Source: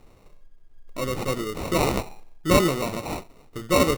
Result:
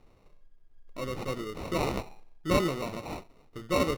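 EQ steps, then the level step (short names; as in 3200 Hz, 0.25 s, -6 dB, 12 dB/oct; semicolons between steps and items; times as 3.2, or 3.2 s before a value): bell 8000 Hz -5 dB 0.49 oct; high shelf 12000 Hz -10 dB; -7.0 dB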